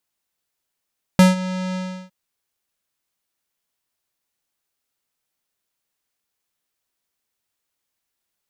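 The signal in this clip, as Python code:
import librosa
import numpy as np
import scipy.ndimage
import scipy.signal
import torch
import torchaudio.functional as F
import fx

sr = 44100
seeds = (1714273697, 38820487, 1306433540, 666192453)

y = fx.sub_voice(sr, note=54, wave='square', cutoff_hz=7300.0, q=0.72, env_oct=1.0, env_s=0.21, attack_ms=1.2, decay_s=0.16, sustain_db=-17, release_s=0.35, note_s=0.56, slope=24)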